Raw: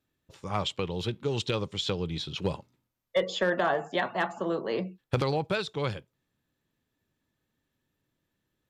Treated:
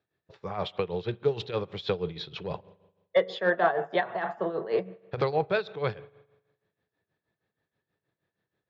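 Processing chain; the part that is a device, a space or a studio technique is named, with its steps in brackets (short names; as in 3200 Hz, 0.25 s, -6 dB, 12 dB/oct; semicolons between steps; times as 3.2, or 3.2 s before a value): combo amplifier with spring reverb and tremolo (spring tank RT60 1.1 s, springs 42 ms, chirp 65 ms, DRR 18 dB; tremolo 6.3 Hz, depth 75%; speaker cabinet 96–4300 Hz, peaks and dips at 260 Hz -10 dB, 440 Hz +6 dB, 700 Hz +6 dB, 1700 Hz +4 dB, 3000 Hz -6 dB); gain +1.5 dB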